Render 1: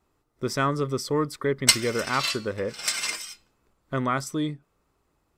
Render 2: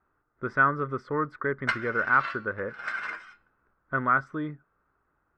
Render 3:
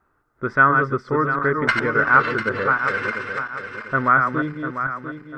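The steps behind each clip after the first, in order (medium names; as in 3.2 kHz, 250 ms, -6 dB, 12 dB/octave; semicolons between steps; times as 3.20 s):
resonant low-pass 1.5 kHz, resonance Q 5.4; trim -5.5 dB
backward echo that repeats 348 ms, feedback 60%, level -5 dB; trim +7 dB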